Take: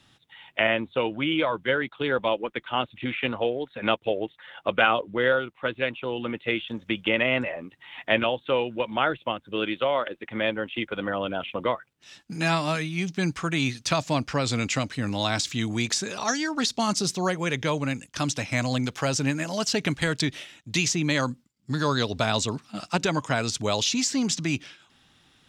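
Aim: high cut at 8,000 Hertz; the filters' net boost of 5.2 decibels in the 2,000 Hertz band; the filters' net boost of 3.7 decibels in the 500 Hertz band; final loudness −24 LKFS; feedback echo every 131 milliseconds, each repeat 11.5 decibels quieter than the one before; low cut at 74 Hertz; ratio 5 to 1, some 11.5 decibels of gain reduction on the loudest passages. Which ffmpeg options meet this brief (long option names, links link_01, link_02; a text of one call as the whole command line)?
ffmpeg -i in.wav -af "highpass=74,lowpass=8000,equalizer=frequency=500:width_type=o:gain=4,equalizer=frequency=2000:width_type=o:gain=6.5,acompressor=threshold=-26dB:ratio=5,aecho=1:1:131|262|393:0.266|0.0718|0.0194,volume=6dB" out.wav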